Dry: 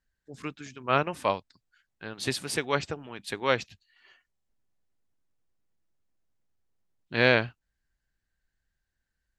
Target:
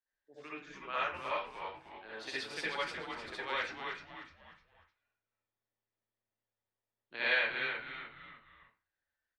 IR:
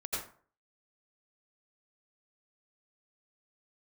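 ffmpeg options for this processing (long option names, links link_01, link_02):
-filter_complex "[0:a]acrossover=split=300 5200:gain=0.1 1 0.112[link_01][link_02][link_03];[link_01][link_02][link_03]amix=inputs=3:normalize=0,acrossover=split=1200[link_04][link_05];[link_04]acompressor=threshold=-37dB:ratio=6[link_06];[link_06][link_05]amix=inputs=2:normalize=0,asplit=5[link_07][link_08][link_09][link_10][link_11];[link_08]adelay=303,afreqshift=-110,volume=-6dB[link_12];[link_09]adelay=606,afreqshift=-220,volume=-14.6dB[link_13];[link_10]adelay=909,afreqshift=-330,volume=-23.3dB[link_14];[link_11]adelay=1212,afreqshift=-440,volume=-31.9dB[link_15];[link_07][link_12][link_13][link_14][link_15]amix=inputs=5:normalize=0[link_16];[1:a]atrim=start_sample=2205,asetrate=61740,aresample=44100[link_17];[link_16][link_17]afir=irnorm=-1:irlink=0,volume=-4.5dB"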